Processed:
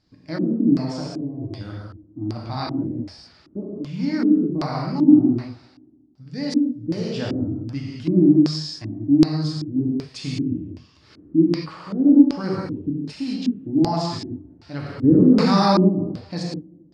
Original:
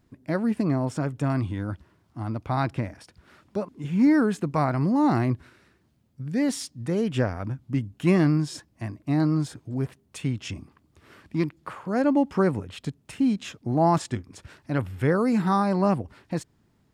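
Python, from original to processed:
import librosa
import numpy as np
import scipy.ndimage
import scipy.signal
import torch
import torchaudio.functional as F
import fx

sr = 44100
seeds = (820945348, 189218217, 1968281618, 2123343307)

p1 = fx.high_shelf(x, sr, hz=6300.0, db=6.0)
p2 = fx.rider(p1, sr, range_db=5, speed_s=0.5)
p3 = p1 + (p2 * librosa.db_to_amplitude(2.0))
p4 = fx.fixed_phaser(p3, sr, hz=550.0, stages=4, at=(1.0, 1.61))
p5 = fx.echo_tape(p4, sr, ms=275, feedback_pct=32, wet_db=-23.0, lp_hz=4400.0, drive_db=6.0, wow_cents=36)
p6 = fx.rev_gated(p5, sr, seeds[0], gate_ms=240, shape='flat', drr_db=-4.0)
p7 = fx.filter_lfo_lowpass(p6, sr, shape='square', hz=1.3, low_hz=300.0, high_hz=4800.0, q=6.5)
p8 = fx.env_flatten(p7, sr, amount_pct=50, at=(15.03, 15.88), fade=0.02)
y = p8 * librosa.db_to_amplitude(-14.5)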